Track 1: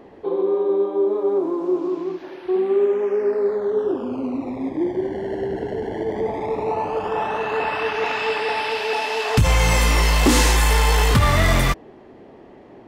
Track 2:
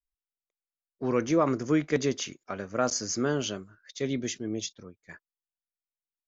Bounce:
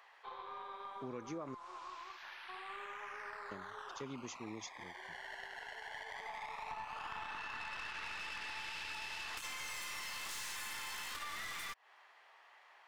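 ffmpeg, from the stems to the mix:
ffmpeg -i stem1.wav -i stem2.wav -filter_complex "[0:a]highpass=frequency=1100:width=0.5412,highpass=frequency=1100:width=1.3066,aeval=exprs='(tanh(15.8*val(0)+0.65)-tanh(0.65))/15.8':channel_layout=same,acompressor=threshold=-31dB:ratio=6,volume=0dB[link_01];[1:a]volume=-11dB,asplit=3[link_02][link_03][link_04];[link_02]atrim=end=1.55,asetpts=PTS-STARTPTS,afade=type=out:start_time=1.546:duration=0.004:curve=hsin[link_05];[link_03]atrim=start=1.55:end=3.51,asetpts=PTS-STARTPTS,volume=0[link_06];[link_04]atrim=start=3.51,asetpts=PTS-STARTPTS,afade=type=in:duration=0.004:curve=hsin[link_07];[link_05][link_06][link_07]concat=n=3:v=0:a=1[link_08];[link_01][link_08]amix=inputs=2:normalize=0,acompressor=threshold=-42dB:ratio=4" out.wav

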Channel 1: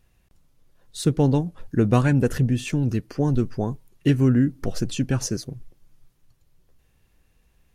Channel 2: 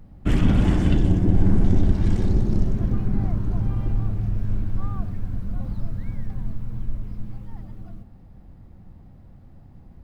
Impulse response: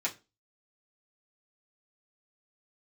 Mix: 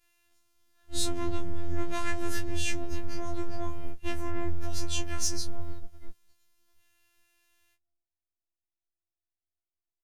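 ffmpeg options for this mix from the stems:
-filter_complex "[0:a]asoftclip=type=tanh:threshold=-19.5dB,flanger=delay=18.5:depth=3.3:speed=1.5,tiltshelf=frequency=690:gain=-8,volume=-3dB,asplit=2[link_01][link_02];[1:a]acompressor=threshold=-23dB:ratio=6,aecho=1:1:1.6:0.48,volume=-0.5dB[link_03];[link_02]apad=whole_len=442793[link_04];[link_03][link_04]sidechaingate=range=-50dB:threshold=-60dB:ratio=16:detection=peak[link_05];[link_01][link_05]amix=inputs=2:normalize=0,afftfilt=real='hypot(re,im)*cos(PI*b)':imag='0':win_size=512:overlap=0.75,afftfilt=real='re*2*eq(mod(b,4),0)':imag='im*2*eq(mod(b,4),0)':win_size=2048:overlap=0.75"

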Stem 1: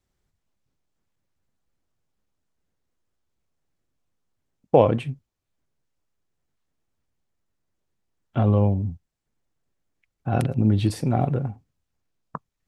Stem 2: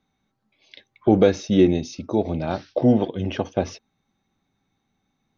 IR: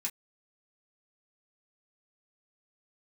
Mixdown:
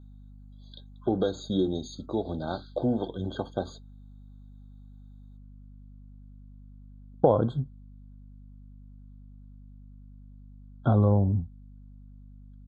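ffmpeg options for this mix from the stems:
-filter_complex "[0:a]lowpass=2500,acompressor=threshold=-20dB:ratio=2.5,adelay=2500,volume=1dB[link_01];[1:a]acompressor=threshold=-17dB:ratio=2.5,volume=-7dB,asplit=2[link_02][link_03];[link_03]volume=-12dB[link_04];[2:a]atrim=start_sample=2205[link_05];[link_04][link_05]afir=irnorm=-1:irlink=0[link_06];[link_01][link_02][link_06]amix=inputs=3:normalize=0,highshelf=frequency=4400:gain=10,aeval=exprs='val(0)+0.00447*(sin(2*PI*50*n/s)+sin(2*PI*2*50*n/s)/2+sin(2*PI*3*50*n/s)/3+sin(2*PI*4*50*n/s)/4+sin(2*PI*5*50*n/s)/5)':channel_layout=same,afftfilt=real='re*eq(mod(floor(b*sr/1024/1600),2),0)':imag='im*eq(mod(floor(b*sr/1024/1600),2),0)':win_size=1024:overlap=0.75"

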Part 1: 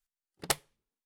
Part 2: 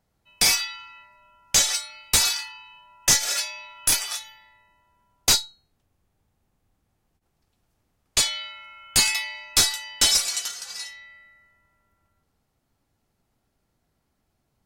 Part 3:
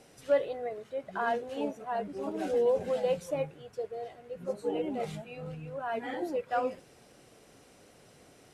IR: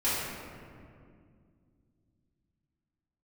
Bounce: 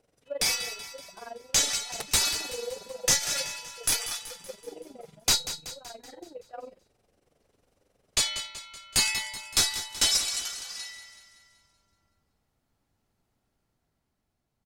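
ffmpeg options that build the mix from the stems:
-filter_complex "[0:a]adelay=1500,volume=2dB[link_01];[1:a]dynaudnorm=framelen=200:gausssize=11:maxgain=4dB,equalizer=frequency=15000:width_type=o:width=0.77:gain=-2.5,volume=-7dB,asplit=2[link_02][link_03];[link_03]volume=-12dB[link_04];[2:a]equalizer=frequency=510:width=1.2:gain=6,tremolo=f=22:d=0.857,volume=-12.5dB,asplit=2[link_05][link_06];[link_06]apad=whole_len=112873[link_07];[link_01][link_07]sidechaincompress=threshold=-53dB:ratio=3:attack=5.1:release=1430[link_08];[link_04]aecho=0:1:189|378|567|756|945|1134|1323|1512:1|0.53|0.281|0.149|0.0789|0.0418|0.0222|0.0117[link_09];[link_08][link_02][link_05][link_09]amix=inputs=4:normalize=0"

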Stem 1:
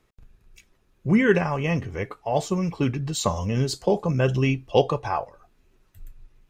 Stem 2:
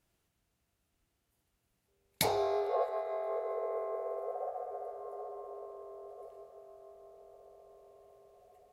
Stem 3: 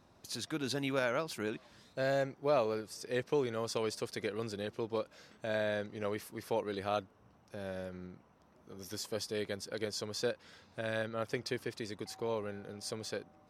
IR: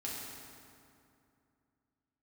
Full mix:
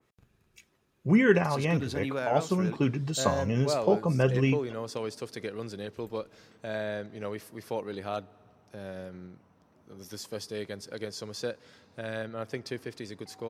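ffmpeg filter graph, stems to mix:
-filter_complex "[0:a]volume=-2.5dB,asplit=3[link_01][link_02][link_03];[link_01]atrim=end=4.73,asetpts=PTS-STARTPTS,afade=type=out:start_time=4.726:duration=0.004:curve=hsin[link_04];[link_02]atrim=start=4.73:end=5.97,asetpts=PTS-STARTPTS,volume=0[link_05];[link_03]atrim=start=5.97,asetpts=PTS-STARTPTS,afade=type=in:duration=0.004:curve=hsin[link_06];[link_04][link_05][link_06]concat=n=3:v=0:a=1[link_07];[2:a]asoftclip=type=hard:threshold=-21dB,lowshelf=frequency=170:gain=6.5,adelay=1200,volume=-0.5dB,asplit=2[link_08][link_09];[link_09]volume=-22dB[link_10];[3:a]atrim=start_sample=2205[link_11];[link_10][link_11]afir=irnorm=-1:irlink=0[link_12];[link_07][link_08][link_12]amix=inputs=3:normalize=0,highpass=100,adynamicequalizer=threshold=0.00631:dfrequency=2200:dqfactor=0.7:tfrequency=2200:tqfactor=0.7:attack=5:release=100:ratio=0.375:range=2:mode=cutabove:tftype=highshelf"

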